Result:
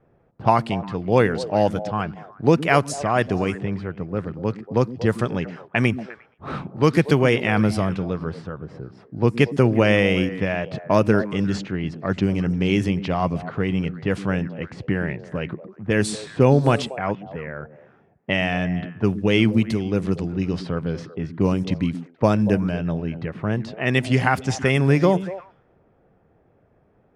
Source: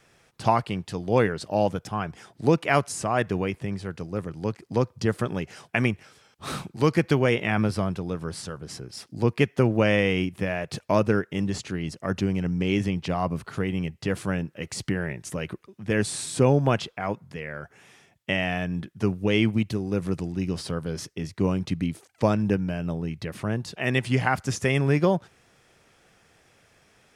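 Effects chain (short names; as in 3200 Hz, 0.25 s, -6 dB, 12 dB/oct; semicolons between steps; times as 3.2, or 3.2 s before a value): delay with a stepping band-pass 0.118 s, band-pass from 220 Hz, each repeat 1.4 oct, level -8.5 dB; low-pass opened by the level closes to 670 Hz, open at -19.5 dBFS; gain +4 dB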